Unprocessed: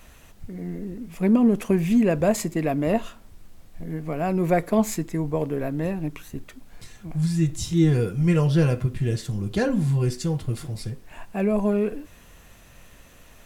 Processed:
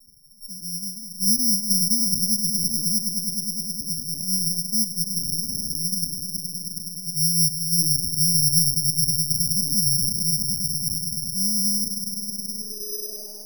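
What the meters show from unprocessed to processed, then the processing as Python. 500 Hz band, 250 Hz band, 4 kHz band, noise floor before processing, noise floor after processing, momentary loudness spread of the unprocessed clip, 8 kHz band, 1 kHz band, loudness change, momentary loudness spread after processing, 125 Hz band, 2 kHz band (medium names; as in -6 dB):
under -20 dB, -8.5 dB, +18.0 dB, -50 dBFS, -38 dBFS, 15 LU, +18.5 dB, under -35 dB, +3.0 dB, 11 LU, -7.5 dB, under -40 dB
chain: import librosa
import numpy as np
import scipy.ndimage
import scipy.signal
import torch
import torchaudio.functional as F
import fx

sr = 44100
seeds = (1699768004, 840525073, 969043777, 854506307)

y = fx.hum_notches(x, sr, base_hz=60, count=6)
y = fx.echo_swell(y, sr, ms=105, loudest=5, wet_db=-12.0)
y = 10.0 ** (-12.5 / 20.0) * np.tanh(y / 10.0 ** (-12.5 / 20.0))
y = fx.filter_sweep_lowpass(y, sr, from_hz=190.0, to_hz=790.0, start_s=12.46, end_s=13.34, q=2.6)
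y = fx.lpc_vocoder(y, sr, seeds[0], excitation='pitch_kept', order=8)
y = (np.kron(scipy.signal.resample_poly(y, 1, 8), np.eye(8)[0]) * 8)[:len(y)]
y = F.gain(torch.from_numpy(y), -13.5).numpy()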